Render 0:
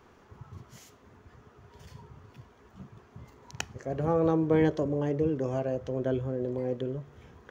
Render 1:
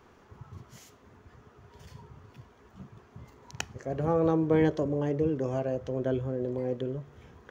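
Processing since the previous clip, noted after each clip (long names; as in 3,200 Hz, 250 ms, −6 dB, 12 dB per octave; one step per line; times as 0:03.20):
no processing that can be heard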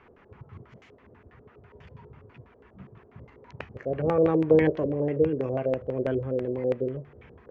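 auto-filter low-pass square 6.1 Hz 510–2,300 Hz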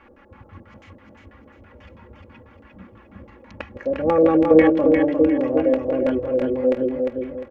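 comb filter 3.6 ms, depth 85%
on a send: repeating echo 352 ms, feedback 34%, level −4 dB
on the sum: level +3.5 dB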